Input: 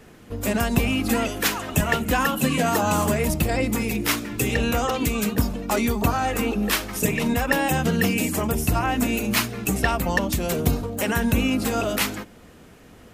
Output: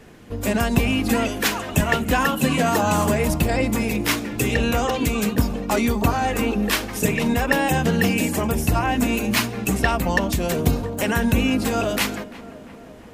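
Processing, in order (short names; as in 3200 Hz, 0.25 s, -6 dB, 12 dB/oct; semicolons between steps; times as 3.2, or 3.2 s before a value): high shelf 9100 Hz -5 dB; notch 1300 Hz, Q 19; on a send: tape echo 0.344 s, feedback 76%, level -15.5 dB, low-pass 1500 Hz; on the sum: gain +2 dB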